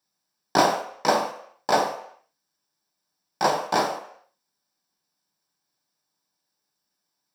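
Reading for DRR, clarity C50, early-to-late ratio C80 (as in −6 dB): 2.5 dB, 9.0 dB, 11.5 dB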